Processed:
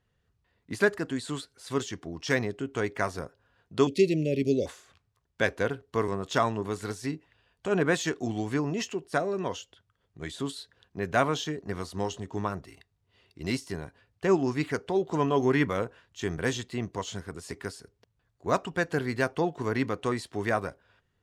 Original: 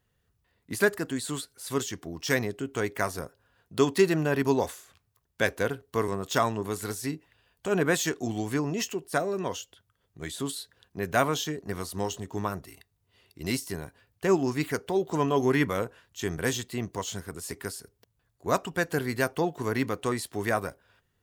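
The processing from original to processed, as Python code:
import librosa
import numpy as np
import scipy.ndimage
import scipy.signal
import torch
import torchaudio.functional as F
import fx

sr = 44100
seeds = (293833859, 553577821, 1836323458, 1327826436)

y = fx.cheby1_bandstop(x, sr, low_hz=590.0, high_hz=2200.0, order=4, at=(3.87, 4.66))
y = fx.air_absorb(y, sr, metres=70.0)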